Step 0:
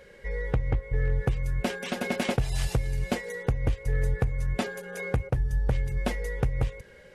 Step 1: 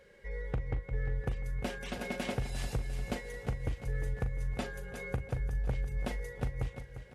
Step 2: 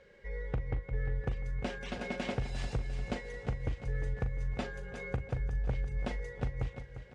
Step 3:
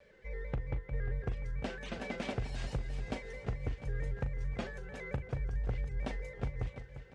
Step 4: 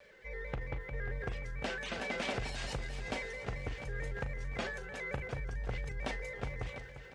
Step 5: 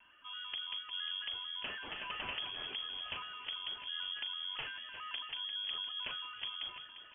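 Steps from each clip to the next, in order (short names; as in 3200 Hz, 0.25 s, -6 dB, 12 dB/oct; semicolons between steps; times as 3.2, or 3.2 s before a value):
doubler 40 ms -11.5 dB; on a send: feedback echo 0.35 s, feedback 51%, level -11 dB; on the sum: gain -8.5 dB
Bessel low-pass 5600 Hz, order 8
shaped vibrato square 4.5 Hz, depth 100 cents; gain -2 dB
low shelf 460 Hz -10.5 dB; transient shaper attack -1 dB, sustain +6 dB; gain +6 dB
inverted band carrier 3300 Hz; gain -4.5 dB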